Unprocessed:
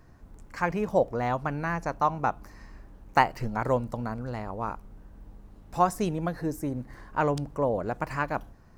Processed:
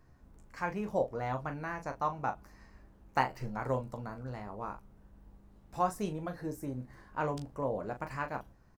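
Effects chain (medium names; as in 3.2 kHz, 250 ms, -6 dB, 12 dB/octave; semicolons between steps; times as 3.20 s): early reflections 15 ms -8.5 dB, 39 ms -9 dB; 5.90–6.32 s: tape noise reduction on one side only decoder only; trim -8.5 dB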